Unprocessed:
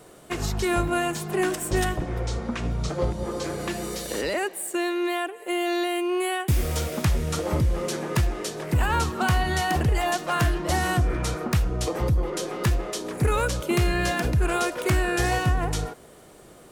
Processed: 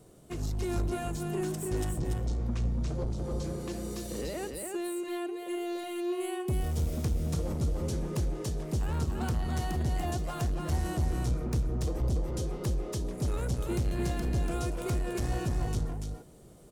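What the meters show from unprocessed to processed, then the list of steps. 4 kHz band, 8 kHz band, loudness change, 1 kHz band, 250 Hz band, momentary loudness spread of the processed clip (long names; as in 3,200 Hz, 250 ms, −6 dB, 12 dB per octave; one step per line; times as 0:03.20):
−13.0 dB, −9.5 dB, −7.5 dB, −13.0 dB, −6.0 dB, 5 LU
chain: drawn EQ curve 120 Hz 0 dB, 1,700 Hz −17 dB, 6,000 Hz −9 dB
soft clipping −26.5 dBFS, distortion −8 dB
on a send: single-tap delay 288 ms −4 dB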